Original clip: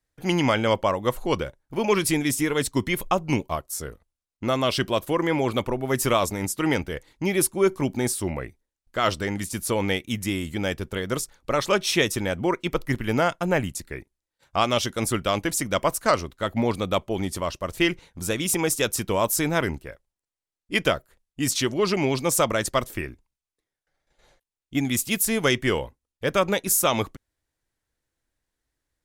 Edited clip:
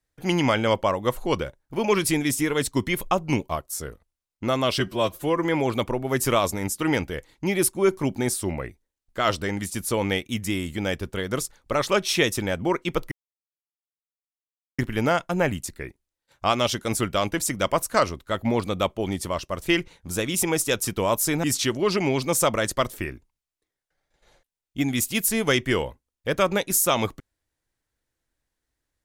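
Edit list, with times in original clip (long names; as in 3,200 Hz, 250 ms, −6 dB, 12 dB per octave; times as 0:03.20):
0:04.80–0:05.23: time-stretch 1.5×
0:12.90: splice in silence 1.67 s
0:19.55–0:21.40: remove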